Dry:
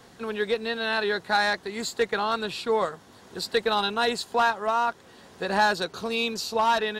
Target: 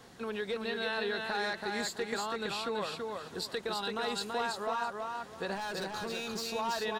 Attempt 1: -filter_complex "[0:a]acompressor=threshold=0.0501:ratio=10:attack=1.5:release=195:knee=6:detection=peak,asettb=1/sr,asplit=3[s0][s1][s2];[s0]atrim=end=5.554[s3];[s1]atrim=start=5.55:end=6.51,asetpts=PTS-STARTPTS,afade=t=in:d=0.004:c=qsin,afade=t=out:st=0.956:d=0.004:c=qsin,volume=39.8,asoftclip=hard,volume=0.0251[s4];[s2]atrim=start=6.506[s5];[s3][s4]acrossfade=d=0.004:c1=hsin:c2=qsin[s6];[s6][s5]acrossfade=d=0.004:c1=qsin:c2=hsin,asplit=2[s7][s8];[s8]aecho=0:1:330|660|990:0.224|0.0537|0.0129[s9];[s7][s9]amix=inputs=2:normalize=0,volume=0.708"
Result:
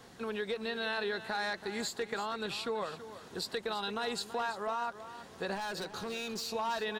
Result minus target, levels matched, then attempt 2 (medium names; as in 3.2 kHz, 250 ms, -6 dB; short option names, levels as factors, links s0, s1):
echo-to-direct -9.5 dB
-filter_complex "[0:a]acompressor=threshold=0.0501:ratio=10:attack=1.5:release=195:knee=6:detection=peak,asettb=1/sr,asplit=3[s0][s1][s2];[s0]atrim=end=5.554[s3];[s1]atrim=start=5.55:end=6.51,asetpts=PTS-STARTPTS,afade=t=in:d=0.004:c=qsin,afade=t=out:st=0.956:d=0.004:c=qsin,volume=39.8,asoftclip=hard,volume=0.0251[s4];[s2]atrim=start=6.506[s5];[s3][s4]acrossfade=d=0.004:c1=hsin:c2=qsin[s6];[s6][s5]acrossfade=d=0.004:c1=qsin:c2=hsin,asplit=2[s7][s8];[s8]aecho=0:1:330|660|990:0.668|0.16|0.0385[s9];[s7][s9]amix=inputs=2:normalize=0,volume=0.708"